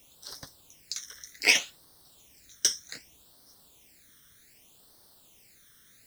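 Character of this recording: a quantiser's noise floor 10-bit, dither triangular; phasing stages 12, 0.65 Hz, lowest notch 800–2500 Hz

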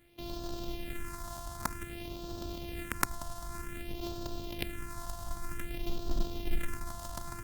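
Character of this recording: a buzz of ramps at a fixed pitch in blocks of 128 samples; phasing stages 4, 0.53 Hz, lowest notch 380–2100 Hz; Opus

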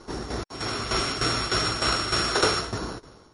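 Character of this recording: a buzz of ramps at a fixed pitch in blocks of 8 samples; tremolo saw down 3.3 Hz, depth 70%; MP3

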